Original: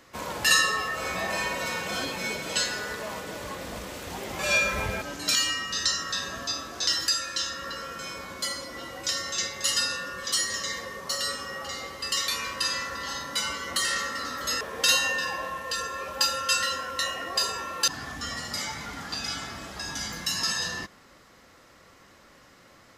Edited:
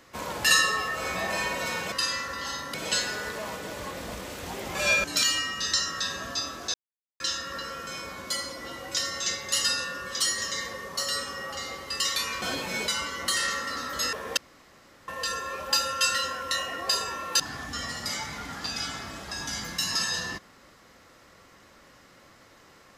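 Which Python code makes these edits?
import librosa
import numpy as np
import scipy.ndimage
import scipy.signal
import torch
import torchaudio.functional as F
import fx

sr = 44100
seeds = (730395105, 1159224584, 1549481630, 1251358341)

y = fx.edit(x, sr, fx.swap(start_s=1.92, length_s=0.46, other_s=12.54, other_length_s=0.82),
    fx.cut(start_s=4.68, length_s=0.48),
    fx.silence(start_s=6.86, length_s=0.46),
    fx.room_tone_fill(start_s=14.85, length_s=0.71), tone=tone)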